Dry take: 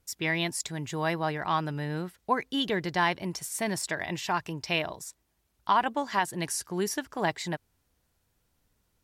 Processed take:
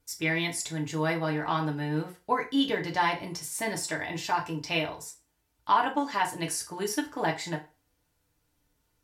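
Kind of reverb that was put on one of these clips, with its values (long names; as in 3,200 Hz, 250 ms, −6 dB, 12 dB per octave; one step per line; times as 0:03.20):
feedback delay network reverb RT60 0.32 s, low-frequency decay 0.8×, high-frequency decay 0.85×, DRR −0.5 dB
level −3 dB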